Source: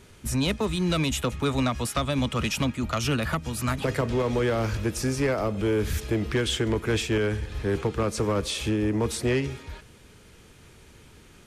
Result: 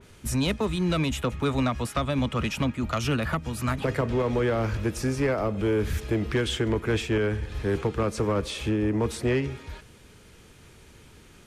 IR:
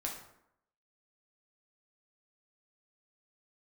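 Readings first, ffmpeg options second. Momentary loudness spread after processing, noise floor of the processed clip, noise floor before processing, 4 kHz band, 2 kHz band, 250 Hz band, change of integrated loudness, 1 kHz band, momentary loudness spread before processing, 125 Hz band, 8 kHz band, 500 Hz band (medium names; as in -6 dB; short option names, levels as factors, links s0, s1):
4 LU, -52 dBFS, -52 dBFS, -3.0 dB, -1.0 dB, 0.0 dB, -0.5 dB, 0.0 dB, 4 LU, 0.0 dB, -5.0 dB, 0.0 dB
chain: -af "adynamicequalizer=threshold=0.00562:dfrequency=3200:dqfactor=0.7:tfrequency=3200:tqfactor=0.7:attack=5:release=100:ratio=0.375:range=4:mode=cutabove:tftype=highshelf"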